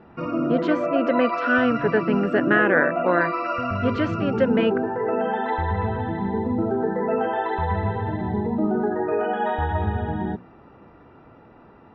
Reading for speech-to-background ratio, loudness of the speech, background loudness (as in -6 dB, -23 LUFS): 2.0 dB, -23.0 LUFS, -25.0 LUFS